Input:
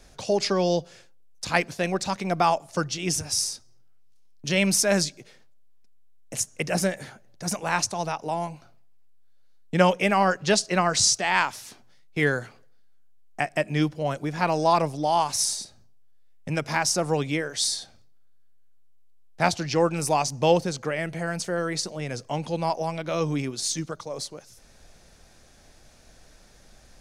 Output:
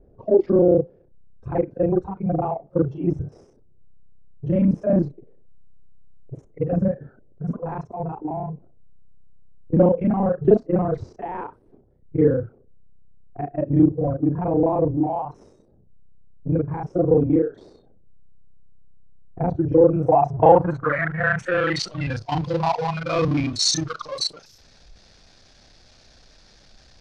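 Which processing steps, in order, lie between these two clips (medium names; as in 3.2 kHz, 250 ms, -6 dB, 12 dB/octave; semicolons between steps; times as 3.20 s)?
time reversed locally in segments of 31 ms; spectral noise reduction 18 dB; in parallel at -9.5 dB: hysteresis with a dead band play -37.5 dBFS; on the sum: power-law waveshaper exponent 0.7; low-pass sweep 420 Hz -> 4.7 kHz, 19.79–22.17 s; trim -2 dB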